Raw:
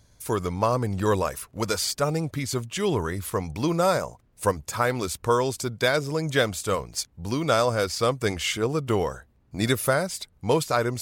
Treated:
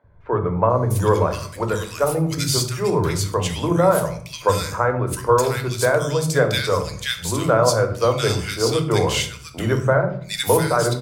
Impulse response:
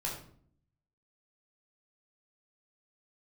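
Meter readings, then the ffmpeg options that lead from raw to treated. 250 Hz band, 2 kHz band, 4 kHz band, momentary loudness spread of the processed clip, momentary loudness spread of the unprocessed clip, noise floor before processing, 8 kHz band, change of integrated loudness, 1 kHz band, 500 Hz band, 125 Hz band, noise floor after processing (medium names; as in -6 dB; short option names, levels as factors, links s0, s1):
+3.5 dB, +3.5 dB, +5.0 dB, 7 LU, 7 LU, -62 dBFS, +5.0 dB, +5.5 dB, +5.0 dB, +6.0 dB, +7.5 dB, -38 dBFS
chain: -filter_complex "[0:a]acrossover=split=270|1800[s0][s1][s2];[s0]adelay=40[s3];[s2]adelay=700[s4];[s3][s1][s4]amix=inputs=3:normalize=0,asplit=2[s5][s6];[1:a]atrim=start_sample=2205[s7];[s6][s7]afir=irnorm=-1:irlink=0,volume=0.596[s8];[s5][s8]amix=inputs=2:normalize=0,volume=1.26"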